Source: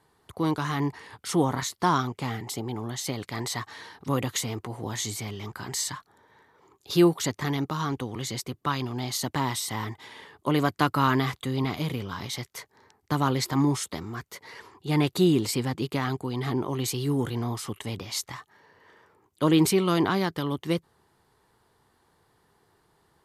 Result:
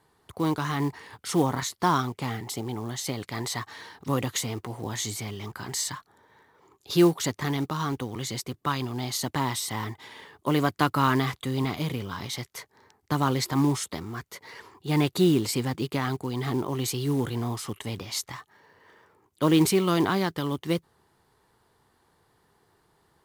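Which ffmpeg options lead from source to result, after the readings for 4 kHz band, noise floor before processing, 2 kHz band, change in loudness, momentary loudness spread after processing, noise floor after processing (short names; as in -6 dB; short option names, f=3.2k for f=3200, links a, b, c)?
0.0 dB, -68 dBFS, 0.0 dB, 0.0 dB, 14 LU, -68 dBFS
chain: -af "acrusher=bits=6:mode=log:mix=0:aa=0.000001"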